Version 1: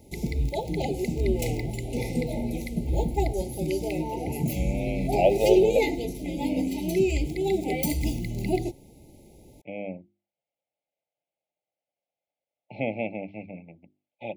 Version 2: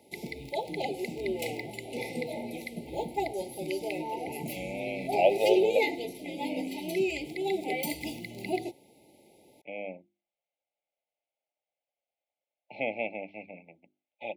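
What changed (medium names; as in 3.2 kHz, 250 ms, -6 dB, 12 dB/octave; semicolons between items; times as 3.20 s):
background: add peaking EQ 6.5 kHz -9.5 dB 0.58 oct; master: add frequency weighting A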